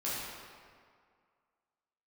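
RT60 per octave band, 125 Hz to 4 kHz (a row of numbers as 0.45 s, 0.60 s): 1.8 s, 2.0 s, 2.0 s, 2.1 s, 1.7 s, 1.3 s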